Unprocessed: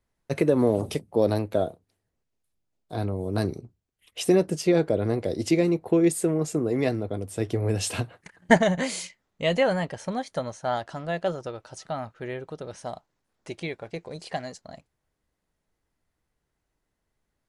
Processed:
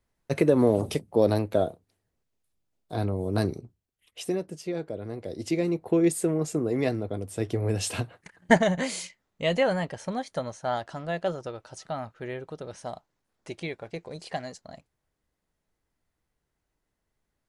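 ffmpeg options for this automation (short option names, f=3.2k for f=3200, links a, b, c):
-af "volume=10dB,afade=t=out:st=3.38:d=1.05:silence=0.266073,afade=t=in:st=5.1:d=0.91:silence=0.334965"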